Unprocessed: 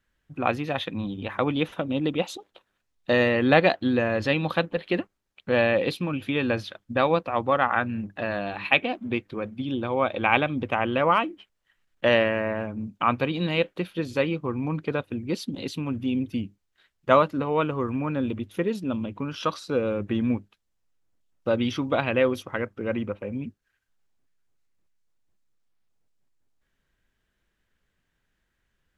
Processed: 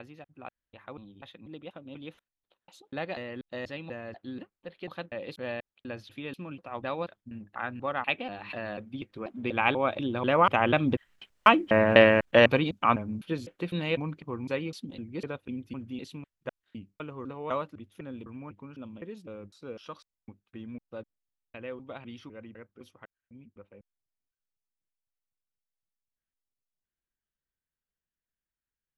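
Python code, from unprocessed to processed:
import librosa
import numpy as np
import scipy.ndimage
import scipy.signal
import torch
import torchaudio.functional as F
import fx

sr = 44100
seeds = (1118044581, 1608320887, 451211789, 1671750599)

y = fx.block_reorder(x, sr, ms=248.0, group=3)
y = fx.doppler_pass(y, sr, speed_mps=6, closest_m=3.6, pass_at_s=11.62)
y = F.gain(torch.from_numpy(y), 6.5).numpy()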